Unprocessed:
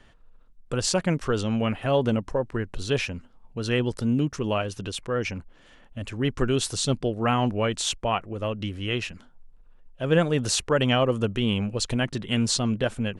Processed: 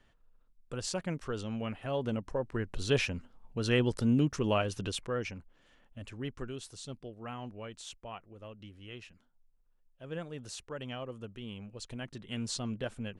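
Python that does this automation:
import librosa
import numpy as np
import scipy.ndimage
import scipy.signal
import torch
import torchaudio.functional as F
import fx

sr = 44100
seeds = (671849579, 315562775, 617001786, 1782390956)

y = fx.gain(x, sr, db=fx.line((1.93, -11.5), (2.9, -3.0), (4.91, -3.0), (5.37, -11.0), (6.11, -11.0), (6.62, -19.0), (11.58, -19.0), (12.62, -11.5)))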